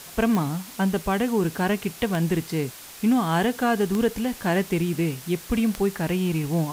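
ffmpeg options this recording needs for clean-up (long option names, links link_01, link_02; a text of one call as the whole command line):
ffmpeg -i in.wav -af "adeclick=threshold=4,afwtdn=0.0089" out.wav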